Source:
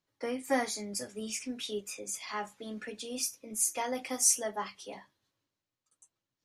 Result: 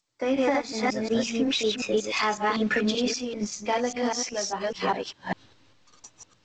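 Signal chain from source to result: chunks repeated in reverse 191 ms, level -1 dB; Doppler pass-by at 2.73 s, 20 m/s, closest 24 m; recorder AGC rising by 39 dB/s; low-pass 5.6 kHz 24 dB/octave; in parallel at -4 dB: hysteresis with a dead band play -34 dBFS; on the sum: trim +1.5 dB; G.722 64 kbps 16 kHz

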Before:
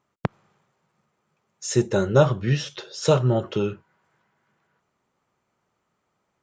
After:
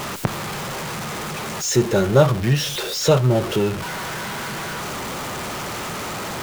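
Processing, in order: jump at every zero crossing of -24 dBFS; trim +1.5 dB

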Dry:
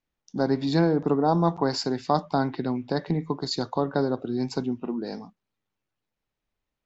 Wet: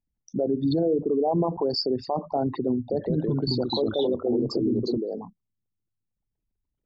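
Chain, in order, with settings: resonances exaggerated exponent 3; 2.78–4.98 s: ever faster or slower copies 145 ms, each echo -2 st, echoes 2; peak limiter -19 dBFS, peak gain reduction 8.5 dB; trim +3 dB

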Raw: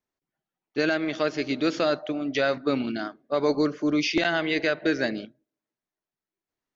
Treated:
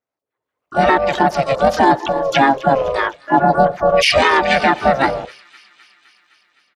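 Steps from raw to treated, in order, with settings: resonances exaggerated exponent 2; level rider gain up to 13 dB; feedback echo behind a high-pass 257 ms, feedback 68%, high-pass 2.8 kHz, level -16 dB; ring modulator 270 Hz; harmony voices -3 st -11 dB, +3 st -11 dB, +12 st -13 dB; high-pass 420 Hz 6 dB/octave; loudness maximiser +6.5 dB; trim -1 dB

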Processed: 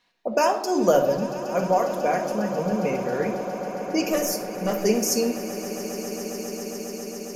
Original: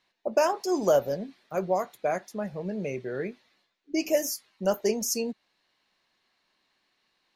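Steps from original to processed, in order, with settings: 4.10–4.83 s: valve stage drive 17 dB, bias 0.3; on a send: echo with a slow build-up 136 ms, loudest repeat 8, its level -17 dB; on the sum: simulated room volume 2200 m³, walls furnished, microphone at 1.8 m; trim +3.5 dB

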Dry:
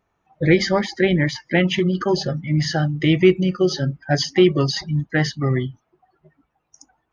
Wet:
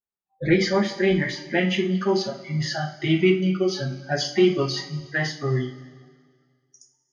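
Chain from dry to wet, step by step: spectral noise reduction 28 dB; two-slope reverb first 0.32 s, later 1.9 s, from -18 dB, DRR -1 dB; trim -6.5 dB

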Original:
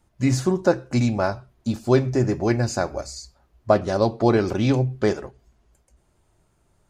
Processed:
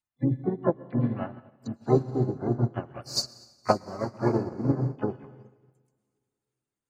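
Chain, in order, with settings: low-pass that closes with the level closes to 520 Hz, closed at -19.5 dBFS; spectral gate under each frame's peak -30 dB strong; tilt EQ +3 dB/octave; harmony voices +3 st -8 dB, +12 st -13 dB; graphic EQ 125/500/2000/4000 Hz +3/-6/+4/+8 dB; reverberation RT60 2.7 s, pre-delay 101 ms, DRR 5.5 dB; upward expansion 2.5:1, over -43 dBFS; trim +5.5 dB

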